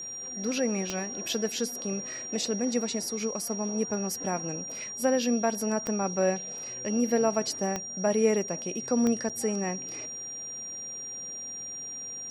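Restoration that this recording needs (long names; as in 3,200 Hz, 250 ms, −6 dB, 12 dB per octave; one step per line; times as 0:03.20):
click removal
notch filter 5,700 Hz, Q 30
repair the gap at 0:09.29, 6.5 ms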